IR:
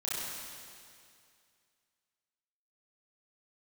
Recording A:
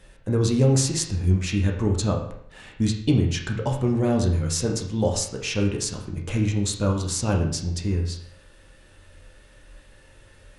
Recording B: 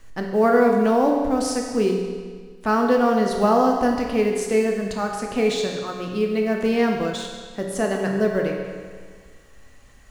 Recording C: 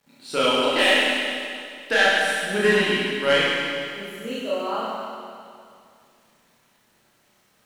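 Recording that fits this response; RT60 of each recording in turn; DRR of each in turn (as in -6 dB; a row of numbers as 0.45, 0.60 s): C; 0.65, 1.7, 2.3 s; 0.0, 1.0, -8.5 dB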